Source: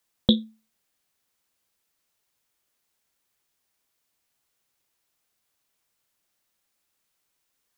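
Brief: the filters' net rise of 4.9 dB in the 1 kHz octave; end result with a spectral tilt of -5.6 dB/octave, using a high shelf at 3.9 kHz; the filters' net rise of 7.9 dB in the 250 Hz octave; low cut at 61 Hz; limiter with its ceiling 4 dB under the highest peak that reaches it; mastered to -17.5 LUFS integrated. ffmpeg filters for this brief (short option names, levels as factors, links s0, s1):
-af "highpass=61,equalizer=f=250:t=o:g=9,equalizer=f=1000:t=o:g=6.5,highshelf=f=3900:g=-8.5,volume=1.5,alimiter=limit=0.841:level=0:latency=1"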